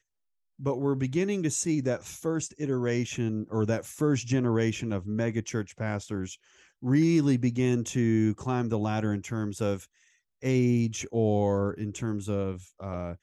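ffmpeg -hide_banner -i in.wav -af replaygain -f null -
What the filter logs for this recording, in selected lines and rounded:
track_gain = +9.3 dB
track_peak = 0.143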